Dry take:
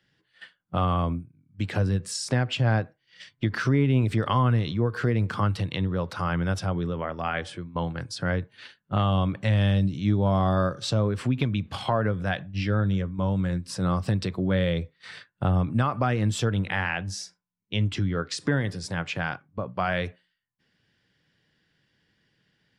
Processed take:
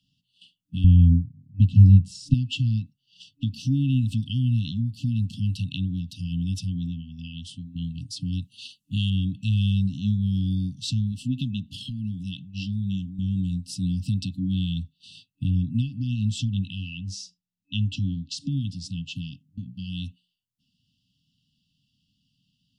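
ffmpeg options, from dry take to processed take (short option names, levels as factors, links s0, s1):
-filter_complex "[0:a]asettb=1/sr,asplit=3[s0][s1][s2];[s0]atrim=end=0.844[s3];[s1]atrim=start=0.84:end=2.34,asetpts=PTS-STARTPTS,afade=t=in:d=0.004:c=qsin,afade=t=out:st=1.496:d=0.004:c=qsin,aemphasis=mode=reproduction:type=riaa[s4];[s2]atrim=start=2.336[s5];[s3][s4]acrossfade=d=0.004:c1=hsin:c2=qsin[s6];[s6][s5]acrossfade=d=0.004:c1=qsin:c2=hsin,asettb=1/sr,asplit=3[s7][s8][s9];[s7]atrim=end=8.324[s10];[s8]atrim=start=8.32:end=9.1,asetpts=PTS-STARTPTS,afade=t=in:d=0.004:c=qsin,afade=t=out:st=0.776:d=0.004:c=qsin,equalizer=f=9100:t=o:w=2.5:g=13[s11];[s9]atrim=start=9.096[s12];[s10][s11]acrossfade=d=0.004:c1=hsin:c2=qsin[s13];[s13][s12]acrossfade=d=0.004:c1=qsin:c2=hsin,asettb=1/sr,asplit=3[s14][s15][s16];[s14]atrim=end=11.124[s17];[s15]atrim=start=11.12:end=13.19,asetpts=PTS-STARTPTS,afade=t=in:d=0.004:c=qsin,afade=t=out:st=2.066:d=0.004:c=qsin,equalizer=f=69:t=o:w=1.4:g=-7.5[s18];[s16]atrim=start=13.186[s19];[s17][s18]acrossfade=d=0.004:c1=hsin:c2=qsin[s20];[s20][s19]acrossfade=d=0.004:c1=qsin:c2=hsin,asettb=1/sr,asplit=3[s21][s22][s23];[s21]atrim=end=15.504[s24];[s22]atrim=start=15.5:end=19.11,asetpts=PTS-STARTPTS,afade=t=in:d=0.004:c=qsin,afade=t=out:st=3.606:d=0.004:c=qsin,lowpass=6600[s25];[s23]atrim=start=19.106[s26];[s24][s25]acrossfade=d=0.004:c1=hsin:c2=qsin[s27];[s27][s26]acrossfade=d=0.004:c1=qsin:c2=hsin,afftfilt=real='re*(1-between(b*sr/4096,280,2600))':imag='im*(1-between(b*sr/4096,280,2600))':win_size=4096:overlap=0.75"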